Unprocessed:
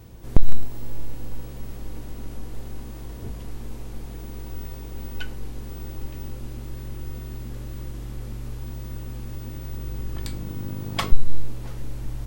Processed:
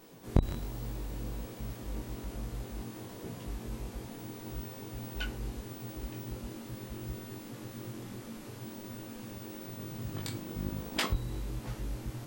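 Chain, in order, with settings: chorus 1.2 Hz, delay 18 ms, depth 4.9 ms; spectral gate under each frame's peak -10 dB weak; gain +1.5 dB

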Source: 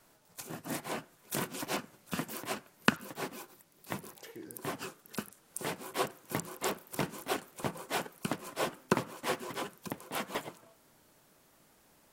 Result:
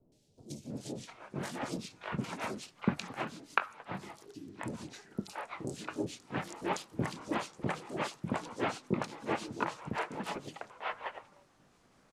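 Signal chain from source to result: repeated pitch sweeps -4.5 st, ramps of 1.25 s; air absorption 89 m; three bands offset in time lows, highs, mids 0.12/0.7 s, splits 520/3300 Hz; gain +3 dB

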